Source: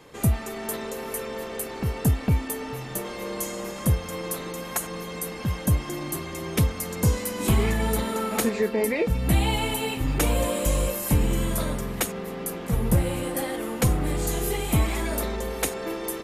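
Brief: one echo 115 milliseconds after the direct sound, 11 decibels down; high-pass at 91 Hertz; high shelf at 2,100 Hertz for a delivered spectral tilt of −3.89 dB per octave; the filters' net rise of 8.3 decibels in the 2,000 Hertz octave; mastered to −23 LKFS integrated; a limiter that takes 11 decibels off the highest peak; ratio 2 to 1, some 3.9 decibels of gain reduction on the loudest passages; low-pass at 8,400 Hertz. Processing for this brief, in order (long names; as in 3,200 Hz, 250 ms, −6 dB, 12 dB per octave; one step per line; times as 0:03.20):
high-pass filter 91 Hz
low-pass filter 8,400 Hz
parametric band 2,000 Hz +7.5 dB
high-shelf EQ 2,100 Hz +4 dB
downward compressor 2 to 1, threshold −24 dBFS
brickwall limiter −21.5 dBFS
single-tap delay 115 ms −11 dB
level +7.5 dB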